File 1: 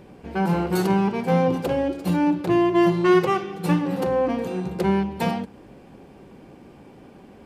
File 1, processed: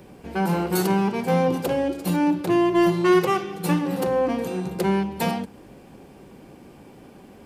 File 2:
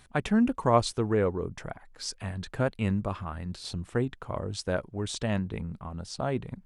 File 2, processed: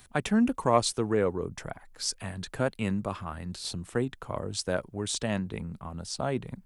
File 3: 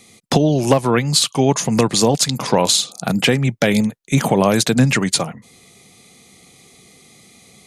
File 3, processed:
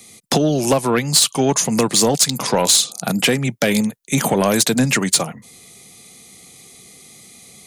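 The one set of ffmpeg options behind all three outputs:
-filter_complex "[0:a]highshelf=f=6.5k:g=10.5,acrossover=split=130|2500[a][b][c];[a]acompressor=threshold=-42dB:ratio=6[d];[d][b][c]amix=inputs=3:normalize=0,asoftclip=type=tanh:threshold=-6dB"

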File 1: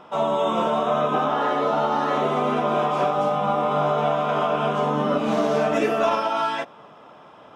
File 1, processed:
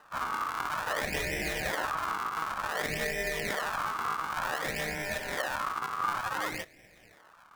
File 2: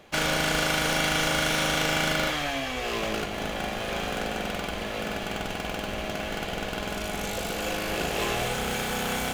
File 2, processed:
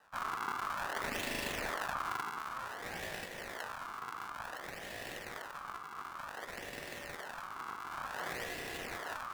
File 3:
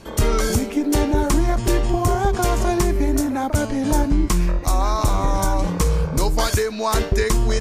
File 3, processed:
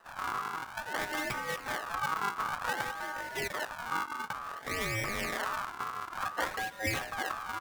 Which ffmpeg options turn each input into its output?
-filter_complex "[0:a]acrossover=split=450 2600:gain=0.158 1 0.0891[a][b][c];[a][b][c]amix=inputs=3:normalize=0,acrusher=samples=40:mix=1:aa=0.000001:lfo=1:lforange=64:lforate=0.55,aeval=exprs='val(0)*sin(2*PI*1200*n/s)':c=same,volume=-6dB"

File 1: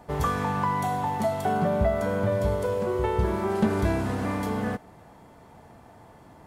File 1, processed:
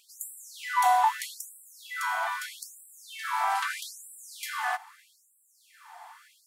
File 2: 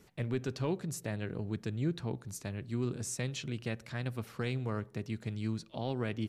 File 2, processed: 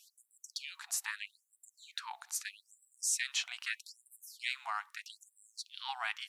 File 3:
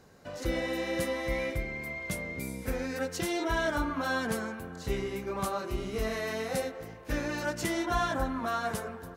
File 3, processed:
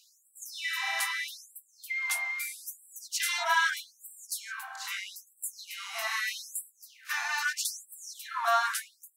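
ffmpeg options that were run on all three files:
-af "afftfilt=real='re*gte(b*sr/1024,650*pow(7600/650,0.5+0.5*sin(2*PI*0.79*pts/sr)))':imag='im*gte(b*sr/1024,650*pow(7600/650,0.5+0.5*sin(2*PI*0.79*pts/sr)))':win_size=1024:overlap=0.75,volume=7.5dB"

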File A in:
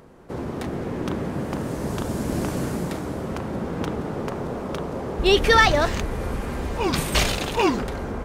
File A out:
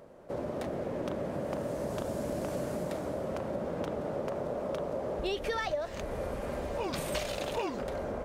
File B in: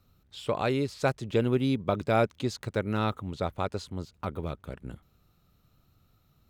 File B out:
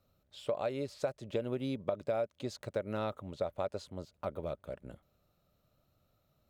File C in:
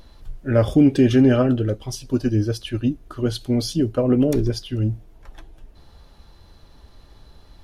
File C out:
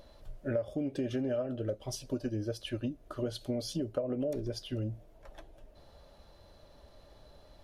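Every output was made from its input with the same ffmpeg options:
-af "equalizer=f=590:t=o:w=0.43:g=13.5,acompressor=threshold=-22dB:ratio=10,lowshelf=f=110:g=-4.5,volume=-7.5dB"

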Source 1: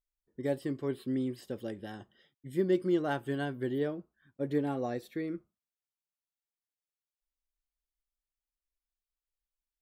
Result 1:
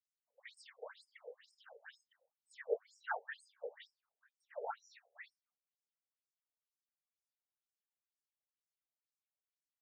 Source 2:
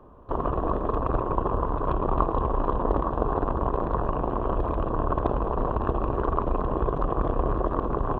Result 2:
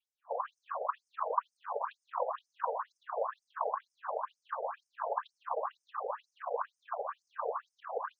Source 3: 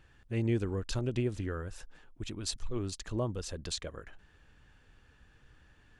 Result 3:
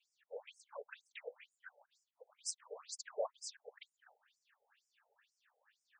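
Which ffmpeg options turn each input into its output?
-af "adynamicequalizer=threshold=0.00355:dfrequency=1600:dqfactor=2.6:tfrequency=1600:tqfactor=2.6:attack=5:release=100:ratio=0.375:range=3:mode=boostabove:tftype=bell,afftfilt=real='hypot(re,im)*cos(2*PI*random(0))':imag='hypot(re,im)*sin(2*PI*random(1))':win_size=512:overlap=0.75,afftfilt=real='re*between(b*sr/1024,590*pow(7000/590,0.5+0.5*sin(2*PI*2.1*pts/sr))/1.41,590*pow(7000/590,0.5+0.5*sin(2*PI*2.1*pts/sr))*1.41)':imag='im*between(b*sr/1024,590*pow(7000/590,0.5+0.5*sin(2*PI*2.1*pts/sr))/1.41,590*pow(7000/590,0.5+0.5*sin(2*PI*2.1*pts/sr))*1.41)':win_size=1024:overlap=0.75,volume=4dB"

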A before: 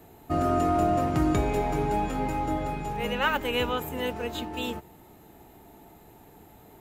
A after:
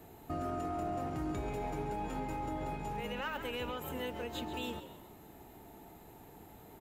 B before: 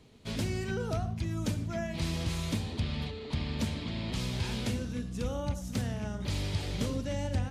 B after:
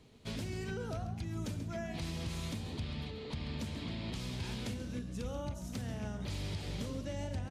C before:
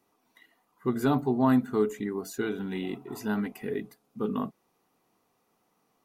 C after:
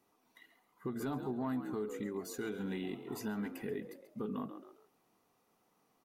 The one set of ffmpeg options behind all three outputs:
-filter_complex "[0:a]asplit=4[a][b][c][d];[b]adelay=135,afreqshift=62,volume=-14dB[e];[c]adelay=270,afreqshift=124,volume=-24.2dB[f];[d]adelay=405,afreqshift=186,volume=-34.3dB[g];[a][e][f][g]amix=inputs=4:normalize=0,asoftclip=type=tanh:threshold=-14dB,alimiter=level_in=3.5dB:limit=-24dB:level=0:latency=1:release=259,volume=-3.5dB,volume=-2.5dB"

